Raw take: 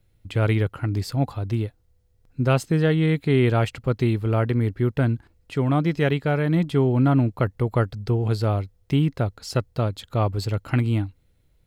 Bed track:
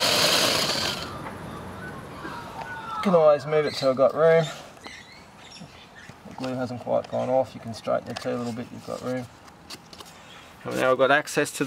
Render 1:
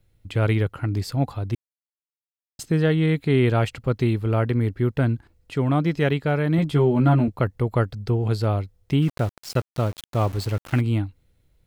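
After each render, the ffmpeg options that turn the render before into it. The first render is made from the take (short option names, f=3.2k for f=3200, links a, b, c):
-filter_complex "[0:a]asettb=1/sr,asplit=3[a][b][c];[a]atrim=end=6.574[d];[b]atrim=start=6.57:end=7.28,asetpts=PTS-STARTPTS,afade=t=in:d=0.004:c=qsin,afade=t=out:st=0.706:d=0.004:c=qsin,asplit=2[e][f];[f]adelay=13,volume=-3dB[g];[e][g]amix=inputs=2:normalize=0,atrim=end_sample=31311[h];[c]atrim=start=7.276[i];[d][h]acrossfade=d=0.004:c1=hsin:c2=qsin[j];[j][i]acrossfade=d=0.004:c1=qsin:c2=hsin,asettb=1/sr,asplit=3[k][l][m];[k]atrim=end=9.024[n];[l]atrim=start=9.02:end=10.81,asetpts=PTS-STARTPTS,afade=t=in:d=0.004:c=qsin,afade=t=out:st=1.786:d=0.004:c=qsin,aeval=exprs='val(0)*gte(abs(val(0)),0.0211)':c=same[o];[m]atrim=start=10.806[p];[n][o]acrossfade=d=0.004:c1=hsin:c2=qsin[q];[q][p]acrossfade=d=0.004:c1=qsin:c2=hsin,asplit=3[r][s][t];[r]atrim=end=1.55,asetpts=PTS-STARTPTS,afade=t=out:st=1.546:d=0.004:c=hsin[u];[s]atrim=start=1.55:end=2.59,asetpts=PTS-STARTPTS,volume=0[v];[t]atrim=start=2.59,asetpts=PTS-STARTPTS,afade=t=in:d=0.004:c=hsin[w];[u][v][w]concat=n=3:v=0:a=1"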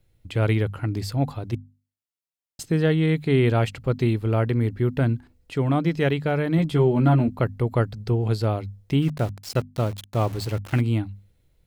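-af "equalizer=f=1.3k:t=o:w=0.77:g=-2,bandreject=f=50:t=h:w=6,bandreject=f=100:t=h:w=6,bandreject=f=150:t=h:w=6,bandreject=f=200:t=h:w=6,bandreject=f=250:t=h:w=6"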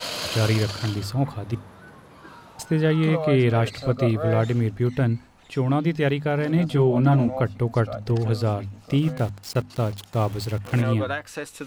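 -filter_complex "[1:a]volume=-9dB[a];[0:a][a]amix=inputs=2:normalize=0"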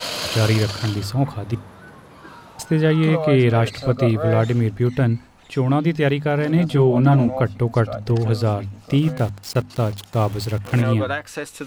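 -af "volume=3.5dB"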